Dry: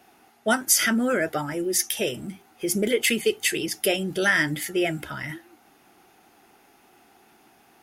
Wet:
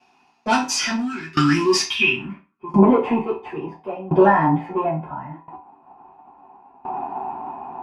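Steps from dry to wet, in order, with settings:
camcorder AGC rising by 6 dB per second
time-frequency box erased 0:01.00–0:02.81, 410–1,100 Hz
leveller curve on the samples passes 3
hollow resonant body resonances 990/2,500 Hz, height 18 dB, ringing for 30 ms
low-pass filter sweep 5,500 Hz → 830 Hz, 0:01.71–0:02.63
convolution reverb RT60 0.30 s, pre-delay 5 ms, DRR −7.5 dB
tremolo with a ramp in dB decaying 0.73 Hz, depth 20 dB
level −8.5 dB

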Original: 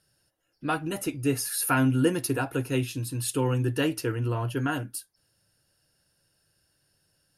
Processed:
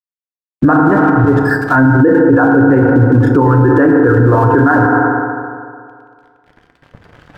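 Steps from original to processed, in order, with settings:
camcorder AGC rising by 5.9 dB per second
Chebyshev low-pass filter 1,700 Hz, order 5
mains-hum notches 50/100 Hz
reverb reduction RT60 1.3 s
harmonic and percussive parts rebalanced percussive +5 dB
0:00.73–0:01.76: volume swells 188 ms
dead-zone distortion −59 dBFS
feedback delay network reverb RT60 2.1 s, low-frequency decay 0.85×, high-frequency decay 0.45×, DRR 4.5 dB
boost into a limiter +29.5 dB
level −1 dB

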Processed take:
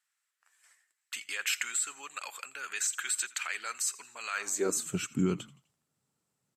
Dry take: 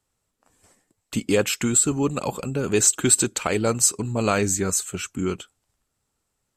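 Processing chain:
brickwall limiter −16 dBFS, peak gain reduction 11.5 dB
echo with shifted repeats 84 ms, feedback 47%, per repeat −76 Hz, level −20.5 dB
high-pass filter sweep 1,700 Hz → 150 Hz, 0:04.33–0:04.85
level −5.5 dB

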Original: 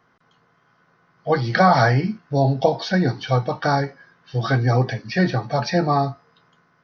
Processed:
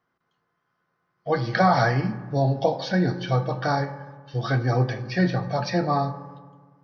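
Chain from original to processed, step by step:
noise gate −54 dBFS, range −10 dB
on a send: convolution reverb RT60 1.5 s, pre-delay 3 ms, DRR 10 dB
on the sum: level −4.5 dB

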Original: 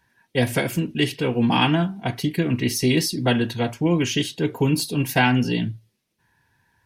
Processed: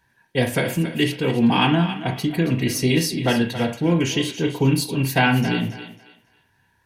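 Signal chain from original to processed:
notch filter 5,300 Hz, Q 25
feedback echo with a high-pass in the loop 274 ms, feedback 27%, high-pass 400 Hz, level −11 dB
on a send at −6 dB: convolution reverb, pre-delay 30 ms

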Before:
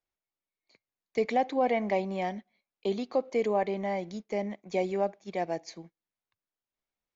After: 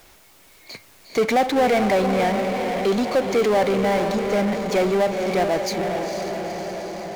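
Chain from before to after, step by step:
feedback delay with all-pass diffusion 476 ms, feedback 51%, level −9.5 dB
power curve on the samples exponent 0.5
level +4.5 dB

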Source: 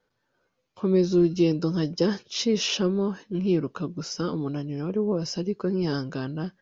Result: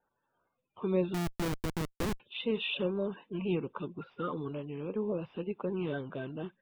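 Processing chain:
spectral magnitudes quantised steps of 30 dB
Chebyshev low-pass with heavy ripple 3,700 Hz, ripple 9 dB
0:01.14–0:02.20: comparator with hysteresis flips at −31 dBFS

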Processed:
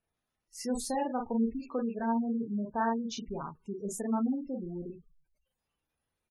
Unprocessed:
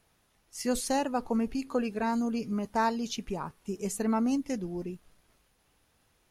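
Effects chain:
ambience of single reflections 35 ms −5 dB, 48 ms −6.5 dB
noise reduction from a noise print of the clip's start 13 dB
gate on every frequency bin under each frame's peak −20 dB strong
level −4.5 dB

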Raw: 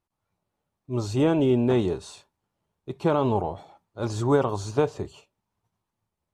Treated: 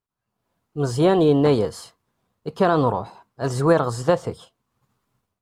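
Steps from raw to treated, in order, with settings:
automatic gain control gain up to 16 dB
speed change +17%
level −5.5 dB

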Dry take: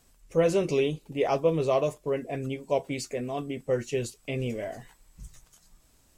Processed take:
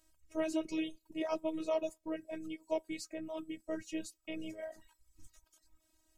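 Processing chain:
phases set to zero 317 Hz
reverb reduction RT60 0.63 s
level −6.5 dB

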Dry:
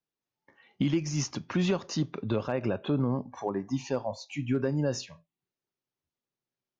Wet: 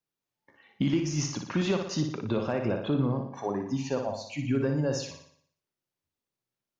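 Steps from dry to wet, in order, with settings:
flutter between parallel walls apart 10.1 metres, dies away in 0.6 s

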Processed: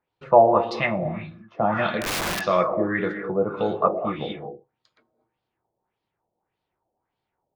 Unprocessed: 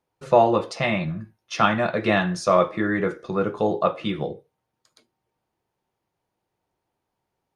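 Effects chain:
reverb whose tail is shaped and stops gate 260 ms rising, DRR 6.5 dB
auto-filter low-pass sine 1.7 Hz 610–4,000 Hz
0:02.01–0:02.41: wrap-around overflow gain 18 dB
level −3.5 dB

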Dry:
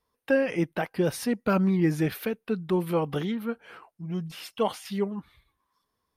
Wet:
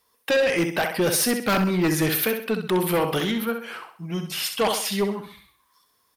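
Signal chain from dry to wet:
spectral tilt +2.5 dB per octave
repeating echo 65 ms, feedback 38%, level −8 dB
sine wavefolder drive 8 dB, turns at −13.5 dBFS
level −3 dB

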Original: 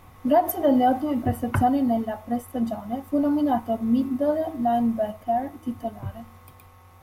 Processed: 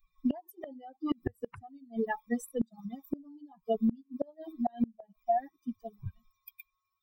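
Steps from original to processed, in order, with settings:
spectral dynamics exaggerated over time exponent 3
in parallel at +3 dB: downward compressor 5 to 1, threshold −37 dBFS, peak gain reduction 17.5 dB
on the sum: gate with flip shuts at −23 dBFS, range −31 dB
level +4.5 dB

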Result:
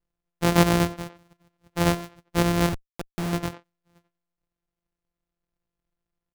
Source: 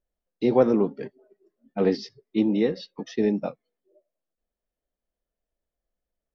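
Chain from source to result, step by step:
samples sorted by size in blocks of 256 samples
far-end echo of a speakerphone 90 ms, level −12 dB
0:02.69–0:03.33: comparator with hysteresis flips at −29 dBFS

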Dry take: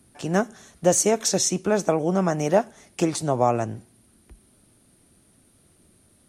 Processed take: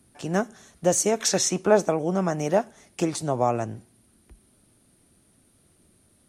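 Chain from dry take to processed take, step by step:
0:01.19–0:01.84: parametric band 2,400 Hz → 590 Hz +8.5 dB 2.2 octaves
level −2.5 dB

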